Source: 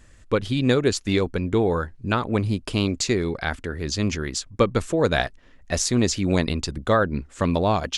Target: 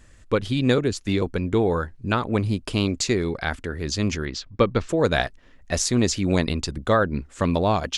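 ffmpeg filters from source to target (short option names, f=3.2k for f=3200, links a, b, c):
-filter_complex "[0:a]asettb=1/sr,asplit=3[a][b][c];[a]atrim=end=0.784[d];[b]atrim=start=0.78:end=1.22,asetpts=PTS-STARTPTS,afade=t=in:d=0.004:c=qsin,afade=t=out:st=0.436:d=0.004:c=qsin,acrossover=split=340[e][f];[f]acompressor=threshold=-27dB:ratio=6[g];[e][g]amix=inputs=2:normalize=0[h];[c]atrim=start=1.216[i];[d][h]acrossfade=d=0.004:c1=hsin:c2=qsin[j];[j][i]acrossfade=d=0.004:c1=qsin:c2=hsin,asettb=1/sr,asplit=3[k][l][m];[k]atrim=end=4.254[n];[l]atrim=start=4.25:end=4.89,asetpts=PTS-STARTPTS,afade=t=in:d=0.004:c=qsin,afade=t=out:st=0.636:d=0.004:c=qsin,lowpass=f=5.1k:w=0.5412,lowpass=f=5.1k:w=1.3066[o];[m]atrim=start=4.886[p];[n][o]acrossfade=d=0.004:c1=hsin:c2=qsin[q];[q][p]acrossfade=d=0.004:c1=qsin:c2=hsin"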